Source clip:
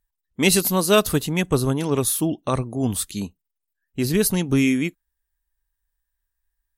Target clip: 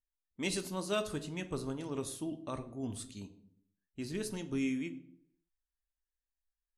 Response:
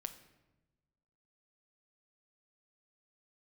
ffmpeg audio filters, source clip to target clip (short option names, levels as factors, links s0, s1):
-filter_complex "[0:a]lowpass=f=9300:w=0.5412,lowpass=f=9300:w=1.3066[s0];[1:a]atrim=start_sample=2205,asetrate=88200,aresample=44100[s1];[s0][s1]afir=irnorm=-1:irlink=0,volume=0.398"